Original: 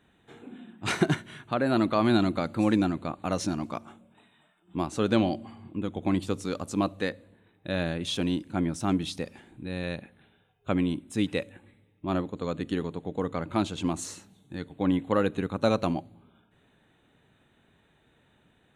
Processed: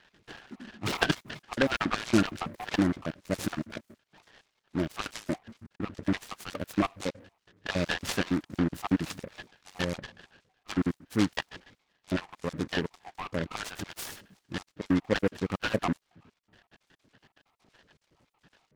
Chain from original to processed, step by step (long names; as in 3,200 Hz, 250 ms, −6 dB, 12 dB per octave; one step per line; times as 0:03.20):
time-frequency cells dropped at random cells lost 66%
parametric band 1,700 Hz +14.5 dB 0.42 octaves
short delay modulated by noise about 1,200 Hz, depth 0.089 ms
level +1.5 dB